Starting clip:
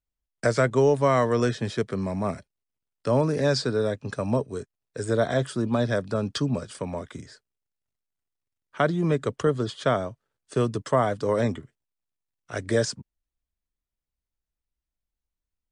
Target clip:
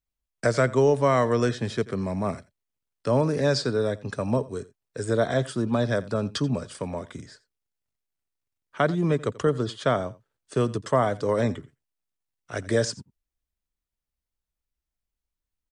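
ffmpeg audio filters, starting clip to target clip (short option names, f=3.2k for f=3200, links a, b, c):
-af "aecho=1:1:86:0.1"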